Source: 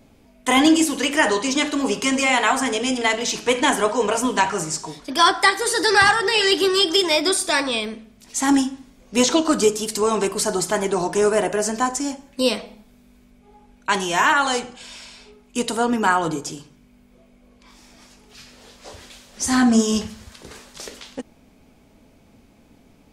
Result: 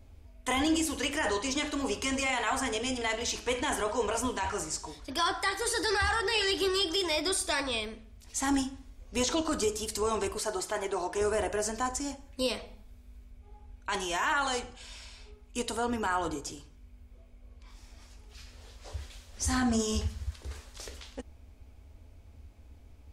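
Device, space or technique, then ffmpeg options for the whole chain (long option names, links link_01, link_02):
car stereo with a boomy subwoofer: -filter_complex "[0:a]lowshelf=frequency=110:width_type=q:width=3:gain=12.5,alimiter=limit=-11dB:level=0:latency=1:release=23,asettb=1/sr,asplit=3[link_01][link_02][link_03];[link_01]atrim=end=10.384[link_04];[link_02]atrim=start=10.38:end=11.21,asetpts=PTS-STARTPTS,afade=type=in:duration=0.004:curve=qsin,afade=type=out:start_time=0.826:duration=0.004:curve=qsin,bass=frequency=250:gain=-10,treble=frequency=4000:gain=-4[link_05];[link_03]atrim=start=11.206[link_06];[link_04][link_05]acrossfade=duration=0.004:curve1=hsin:curve2=qsin[link_07];[link_07][link_06]acrossfade=duration=0.004:curve1=qsin:curve2=hsin,volume=-8.5dB"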